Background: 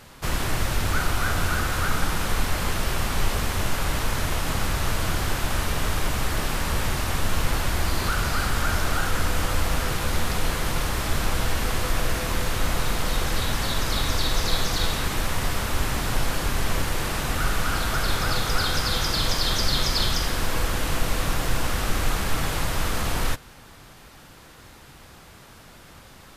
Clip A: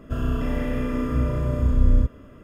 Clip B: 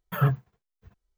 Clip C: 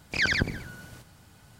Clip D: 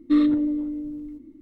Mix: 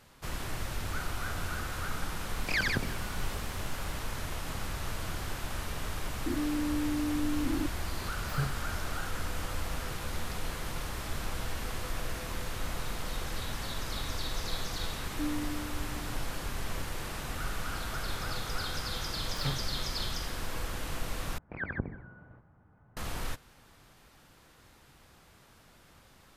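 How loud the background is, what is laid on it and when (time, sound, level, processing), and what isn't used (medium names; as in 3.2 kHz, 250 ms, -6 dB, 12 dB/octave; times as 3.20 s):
background -11.5 dB
2.35 s: add C -4.5 dB + three bands compressed up and down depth 40%
6.26 s: add D -16.5 dB + level flattener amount 100%
8.16 s: add B -11 dB
15.09 s: add D -16.5 dB
19.23 s: add B -12 dB + self-modulated delay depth 0.76 ms
21.38 s: replace with C -6.5 dB + low-pass 1.5 kHz 24 dB/octave
not used: A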